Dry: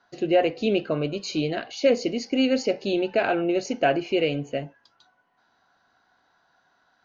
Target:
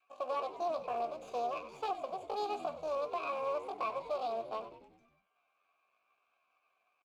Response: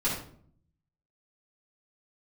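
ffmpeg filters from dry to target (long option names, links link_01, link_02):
-filter_complex "[0:a]equalizer=frequency=100:width_type=o:width=0.33:gain=-4,equalizer=frequency=500:width_type=o:width=0.33:gain=-10,equalizer=frequency=1000:width_type=o:width=0.33:gain=5,aeval=exprs='max(val(0),0)':channel_layout=same,asetrate=70004,aresample=44100,atempo=0.629961,adynamicequalizer=threshold=0.00631:dfrequency=560:dqfactor=3.1:tfrequency=560:tqfactor=3.1:attack=5:release=100:ratio=0.375:range=2.5:mode=boostabove:tftype=bell,acrusher=bits=3:mode=log:mix=0:aa=0.000001,asplit=3[link_01][link_02][link_03];[link_01]bandpass=frequency=730:width_type=q:width=8,volume=0dB[link_04];[link_02]bandpass=frequency=1090:width_type=q:width=8,volume=-6dB[link_05];[link_03]bandpass=frequency=2440:width_type=q:width=8,volume=-9dB[link_06];[link_04][link_05][link_06]amix=inputs=3:normalize=0,alimiter=level_in=7.5dB:limit=-24dB:level=0:latency=1:release=326,volume=-7.5dB,asplit=2[link_07][link_08];[link_08]asplit=6[link_09][link_10][link_11][link_12][link_13][link_14];[link_09]adelay=96,afreqshift=-84,volume=-12.5dB[link_15];[link_10]adelay=192,afreqshift=-168,volume=-17.5dB[link_16];[link_11]adelay=288,afreqshift=-252,volume=-22.6dB[link_17];[link_12]adelay=384,afreqshift=-336,volume=-27.6dB[link_18];[link_13]adelay=480,afreqshift=-420,volume=-32.6dB[link_19];[link_14]adelay=576,afreqshift=-504,volume=-37.7dB[link_20];[link_15][link_16][link_17][link_18][link_19][link_20]amix=inputs=6:normalize=0[link_21];[link_07][link_21]amix=inputs=2:normalize=0,volume=4.5dB"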